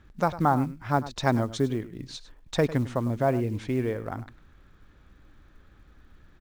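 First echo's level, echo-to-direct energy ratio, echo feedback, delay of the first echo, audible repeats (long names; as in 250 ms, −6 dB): −15.5 dB, −15.5 dB, repeats not evenly spaced, 101 ms, 1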